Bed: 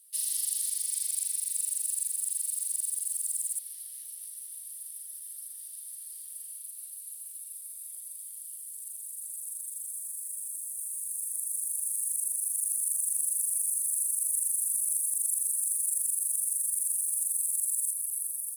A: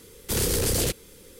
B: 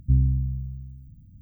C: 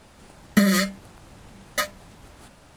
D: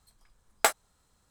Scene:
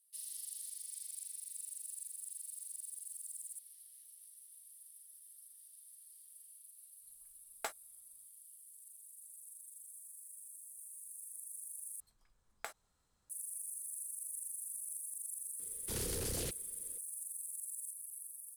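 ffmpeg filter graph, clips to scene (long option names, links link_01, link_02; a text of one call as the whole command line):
ffmpeg -i bed.wav -i cue0.wav -i cue1.wav -i cue2.wav -i cue3.wav -filter_complex "[4:a]asplit=2[link_01][link_02];[0:a]volume=-15dB[link_03];[link_02]acompressor=threshold=-31dB:ratio=6:attack=3.2:release=140:knee=1:detection=peak[link_04];[link_03]asplit=2[link_05][link_06];[link_05]atrim=end=12.004[link_07];[link_04]atrim=end=1.3,asetpts=PTS-STARTPTS,volume=-9dB[link_08];[link_06]atrim=start=13.296[link_09];[link_01]atrim=end=1.3,asetpts=PTS-STARTPTS,volume=-17.5dB,afade=type=in:duration=0.05,afade=type=out:start_time=1.25:duration=0.05,adelay=7000[link_10];[1:a]atrim=end=1.39,asetpts=PTS-STARTPTS,volume=-15dB,afade=type=in:duration=0.004:curve=hsin,afade=type=out:start_time=1.386:duration=0.004:curve=hsin,adelay=15590[link_11];[link_07][link_08]acrossfade=duration=0.004:curve1=hsin:curve2=hsin[link_12];[link_12][link_09]acrossfade=duration=0.004:curve1=hsin:curve2=hsin[link_13];[link_13][link_10][link_11]amix=inputs=3:normalize=0" out.wav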